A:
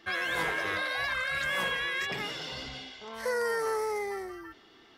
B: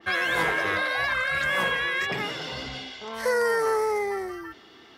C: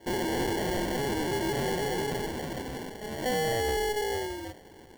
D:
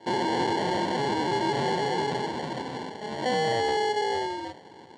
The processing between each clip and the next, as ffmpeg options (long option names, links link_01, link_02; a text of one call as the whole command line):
ffmpeg -i in.wav -af "highpass=51,adynamicequalizer=threshold=0.00708:dfrequency=2500:dqfactor=0.7:tfrequency=2500:tqfactor=0.7:attack=5:release=100:ratio=0.375:range=2.5:mode=cutabove:tftype=highshelf,volume=6.5dB" out.wav
ffmpeg -i in.wav -af "acrusher=samples=35:mix=1:aa=0.000001,asoftclip=type=tanh:threshold=-25dB" out.wav
ffmpeg -i in.wav -af "highpass=frequency=110:width=0.5412,highpass=frequency=110:width=1.3066,equalizer=frequency=920:width_type=q:width=4:gain=9,equalizer=frequency=4000:width_type=q:width=4:gain=6,equalizer=frequency=6000:width_type=q:width=4:gain=-5,lowpass=frequency=7200:width=0.5412,lowpass=frequency=7200:width=1.3066,volume=1.5dB" out.wav